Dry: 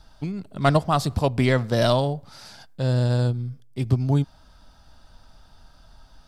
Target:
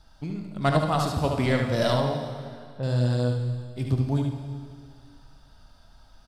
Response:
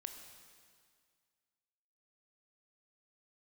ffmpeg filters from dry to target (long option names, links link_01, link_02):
-filter_complex "[0:a]asettb=1/sr,asplit=3[link_01][link_02][link_03];[link_01]atrim=end=1.934[link_04];[link_02]atrim=start=1.93:end=2.83,asetpts=PTS-STARTPTS,afade=type=in:duration=0.004:curve=qsin,afade=type=out:start_time=0.896:duration=0.004:curve=qsin,lowpass=1500[link_05];[link_03]atrim=start=2.826[link_06];[link_04][link_05]acrossfade=duration=0.004:curve1=hsin:curve2=qsin[link_07];[link_07][link_06]acrossfade=duration=0.004:curve1=qsin:curve2=hsin,aecho=1:1:73:0.596[link_08];[1:a]atrim=start_sample=2205[link_09];[link_08][link_09]afir=irnorm=-1:irlink=0"